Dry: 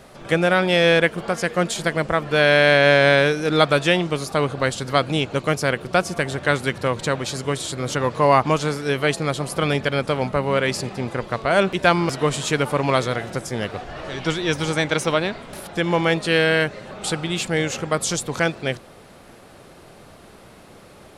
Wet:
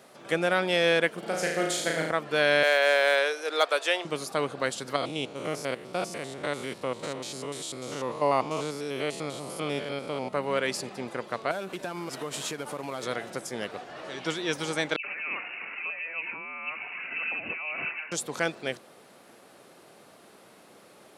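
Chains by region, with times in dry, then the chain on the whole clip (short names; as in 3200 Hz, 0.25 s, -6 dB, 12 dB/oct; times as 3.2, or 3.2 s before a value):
1.19–2.11 HPF 110 Hz + bell 1100 Hz -10 dB 0.4 oct + flutter echo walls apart 6.3 m, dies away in 0.77 s
2.63–4.05 HPF 440 Hz 24 dB/oct + hard clip -5 dBFS
4.96–10.33 stepped spectrum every 0.1 s + bell 1600 Hz -8 dB 0.42 oct
11.51–13.03 CVSD 64 kbps + compressor 8:1, threshold -22 dBFS
14.96–18.12 negative-ratio compressor -27 dBFS + dispersion highs, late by 87 ms, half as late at 560 Hz + inverted band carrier 2800 Hz
whole clip: HPF 220 Hz 12 dB/oct; high shelf 7600 Hz +4.5 dB; gain -7 dB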